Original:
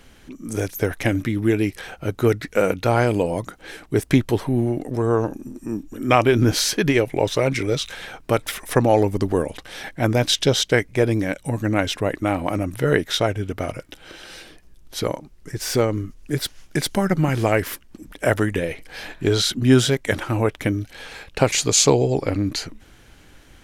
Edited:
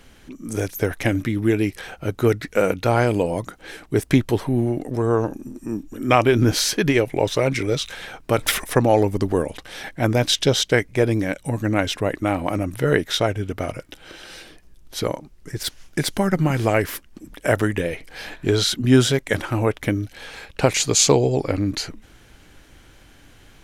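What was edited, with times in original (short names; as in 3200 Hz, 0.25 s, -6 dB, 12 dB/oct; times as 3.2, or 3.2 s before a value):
8.38–8.64 gain +8 dB
15.63–16.41 cut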